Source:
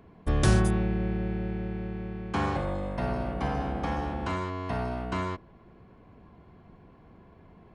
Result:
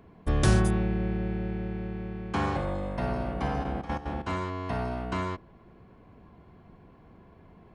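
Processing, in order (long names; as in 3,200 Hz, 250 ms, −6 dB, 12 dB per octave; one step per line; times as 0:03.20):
0:03.63–0:04.26: gate pattern "xx.x.xx.." 185 BPM −12 dB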